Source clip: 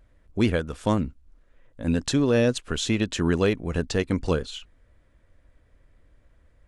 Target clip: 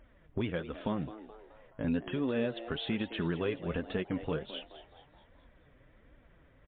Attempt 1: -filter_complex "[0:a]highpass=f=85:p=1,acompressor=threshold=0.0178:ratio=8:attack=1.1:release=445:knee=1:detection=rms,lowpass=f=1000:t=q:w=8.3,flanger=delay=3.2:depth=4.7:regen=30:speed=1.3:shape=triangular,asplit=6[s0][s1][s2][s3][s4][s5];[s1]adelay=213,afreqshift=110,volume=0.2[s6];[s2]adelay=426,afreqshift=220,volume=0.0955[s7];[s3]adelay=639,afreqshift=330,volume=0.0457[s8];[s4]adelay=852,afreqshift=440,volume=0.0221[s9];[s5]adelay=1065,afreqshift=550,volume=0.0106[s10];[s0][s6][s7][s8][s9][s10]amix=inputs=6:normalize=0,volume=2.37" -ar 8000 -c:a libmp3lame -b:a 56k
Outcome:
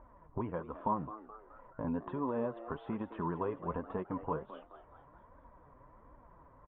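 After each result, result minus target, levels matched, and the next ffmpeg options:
1 kHz band +10.5 dB; compression: peak gain reduction +5 dB
-filter_complex "[0:a]highpass=f=85:p=1,acompressor=threshold=0.0178:ratio=8:attack=1.1:release=445:knee=1:detection=rms,flanger=delay=3.2:depth=4.7:regen=30:speed=1.3:shape=triangular,asplit=6[s0][s1][s2][s3][s4][s5];[s1]adelay=213,afreqshift=110,volume=0.2[s6];[s2]adelay=426,afreqshift=220,volume=0.0955[s7];[s3]adelay=639,afreqshift=330,volume=0.0457[s8];[s4]adelay=852,afreqshift=440,volume=0.0221[s9];[s5]adelay=1065,afreqshift=550,volume=0.0106[s10];[s0][s6][s7][s8][s9][s10]amix=inputs=6:normalize=0,volume=2.37" -ar 8000 -c:a libmp3lame -b:a 56k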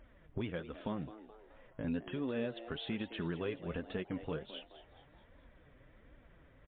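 compression: peak gain reduction +5 dB
-filter_complex "[0:a]highpass=f=85:p=1,acompressor=threshold=0.0355:ratio=8:attack=1.1:release=445:knee=1:detection=rms,flanger=delay=3.2:depth=4.7:regen=30:speed=1.3:shape=triangular,asplit=6[s0][s1][s2][s3][s4][s5];[s1]adelay=213,afreqshift=110,volume=0.2[s6];[s2]adelay=426,afreqshift=220,volume=0.0955[s7];[s3]adelay=639,afreqshift=330,volume=0.0457[s8];[s4]adelay=852,afreqshift=440,volume=0.0221[s9];[s5]adelay=1065,afreqshift=550,volume=0.0106[s10];[s0][s6][s7][s8][s9][s10]amix=inputs=6:normalize=0,volume=2.37" -ar 8000 -c:a libmp3lame -b:a 56k

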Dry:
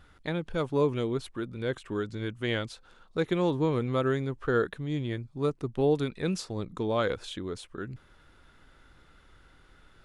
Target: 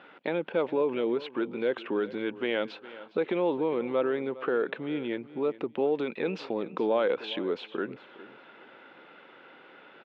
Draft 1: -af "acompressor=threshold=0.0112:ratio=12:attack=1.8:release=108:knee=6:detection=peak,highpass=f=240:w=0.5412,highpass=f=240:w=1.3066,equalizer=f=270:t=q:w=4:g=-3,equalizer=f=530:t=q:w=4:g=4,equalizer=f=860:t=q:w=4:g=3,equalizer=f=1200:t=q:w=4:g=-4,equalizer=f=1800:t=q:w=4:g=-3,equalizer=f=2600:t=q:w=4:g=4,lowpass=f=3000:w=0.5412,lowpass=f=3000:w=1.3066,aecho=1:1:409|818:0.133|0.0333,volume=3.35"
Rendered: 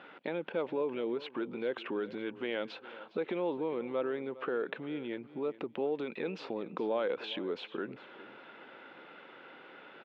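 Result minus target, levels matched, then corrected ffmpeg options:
compression: peak gain reduction +6.5 dB
-af "acompressor=threshold=0.0251:ratio=12:attack=1.8:release=108:knee=6:detection=peak,highpass=f=240:w=0.5412,highpass=f=240:w=1.3066,equalizer=f=270:t=q:w=4:g=-3,equalizer=f=530:t=q:w=4:g=4,equalizer=f=860:t=q:w=4:g=3,equalizer=f=1200:t=q:w=4:g=-4,equalizer=f=1800:t=q:w=4:g=-3,equalizer=f=2600:t=q:w=4:g=4,lowpass=f=3000:w=0.5412,lowpass=f=3000:w=1.3066,aecho=1:1:409|818:0.133|0.0333,volume=3.35"

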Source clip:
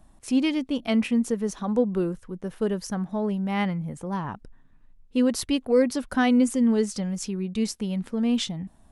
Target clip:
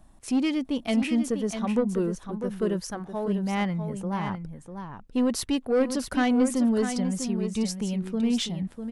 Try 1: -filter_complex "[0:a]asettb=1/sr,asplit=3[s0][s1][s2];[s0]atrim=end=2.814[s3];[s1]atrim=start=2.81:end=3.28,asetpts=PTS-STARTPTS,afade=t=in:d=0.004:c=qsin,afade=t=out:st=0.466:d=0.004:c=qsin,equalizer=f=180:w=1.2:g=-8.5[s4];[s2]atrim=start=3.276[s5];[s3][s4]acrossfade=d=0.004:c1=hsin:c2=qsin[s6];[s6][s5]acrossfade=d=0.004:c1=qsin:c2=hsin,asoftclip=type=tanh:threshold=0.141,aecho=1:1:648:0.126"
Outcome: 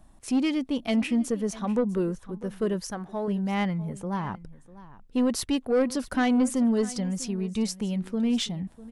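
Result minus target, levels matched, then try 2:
echo-to-direct -10 dB
-filter_complex "[0:a]asettb=1/sr,asplit=3[s0][s1][s2];[s0]atrim=end=2.814[s3];[s1]atrim=start=2.81:end=3.28,asetpts=PTS-STARTPTS,afade=t=in:d=0.004:c=qsin,afade=t=out:st=0.466:d=0.004:c=qsin,equalizer=f=180:w=1.2:g=-8.5[s4];[s2]atrim=start=3.276[s5];[s3][s4]acrossfade=d=0.004:c1=hsin:c2=qsin[s6];[s6][s5]acrossfade=d=0.004:c1=qsin:c2=hsin,asoftclip=type=tanh:threshold=0.141,aecho=1:1:648:0.398"

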